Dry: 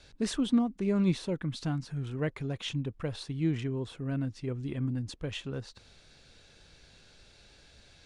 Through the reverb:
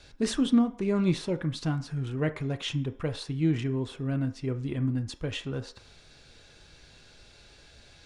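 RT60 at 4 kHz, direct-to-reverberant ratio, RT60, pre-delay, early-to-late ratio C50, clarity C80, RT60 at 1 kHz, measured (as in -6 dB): 0.55 s, 7.0 dB, 0.45 s, 3 ms, 15.5 dB, 19.0 dB, 0.50 s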